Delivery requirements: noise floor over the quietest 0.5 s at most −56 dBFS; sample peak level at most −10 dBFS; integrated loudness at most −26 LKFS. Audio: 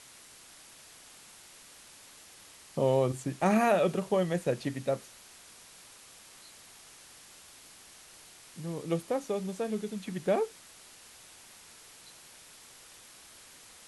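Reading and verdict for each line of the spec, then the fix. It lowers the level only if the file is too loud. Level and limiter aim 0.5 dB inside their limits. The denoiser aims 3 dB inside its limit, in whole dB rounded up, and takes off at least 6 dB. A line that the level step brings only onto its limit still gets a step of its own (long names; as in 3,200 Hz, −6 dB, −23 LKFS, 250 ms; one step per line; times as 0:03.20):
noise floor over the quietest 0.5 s −54 dBFS: out of spec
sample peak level −14.0 dBFS: in spec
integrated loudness −30.5 LKFS: in spec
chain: broadband denoise 6 dB, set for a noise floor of −54 dBFS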